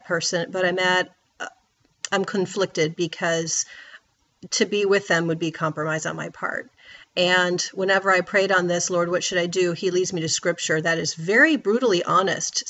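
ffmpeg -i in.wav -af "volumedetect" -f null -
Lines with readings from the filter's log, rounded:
mean_volume: -23.0 dB
max_volume: -3.8 dB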